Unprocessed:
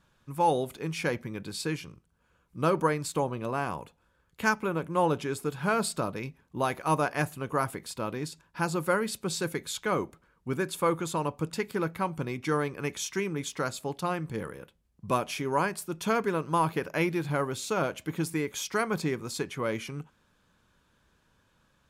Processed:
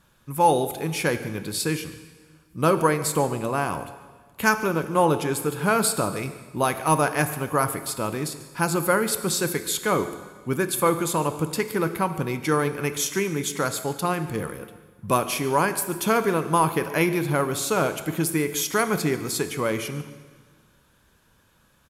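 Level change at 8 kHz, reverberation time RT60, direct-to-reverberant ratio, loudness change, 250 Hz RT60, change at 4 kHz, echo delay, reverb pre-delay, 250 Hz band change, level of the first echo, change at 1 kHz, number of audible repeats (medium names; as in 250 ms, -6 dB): +10.5 dB, 1.5 s, 10.5 dB, +6.5 dB, 1.6 s, +7.0 dB, 144 ms, 23 ms, +6.0 dB, -19.5 dB, +6.0 dB, 1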